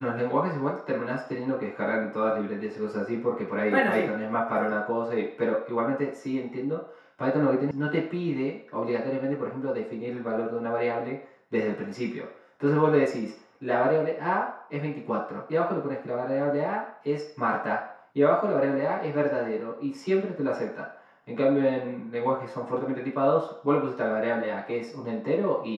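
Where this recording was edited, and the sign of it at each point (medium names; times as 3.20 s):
7.71 s: sound stops dead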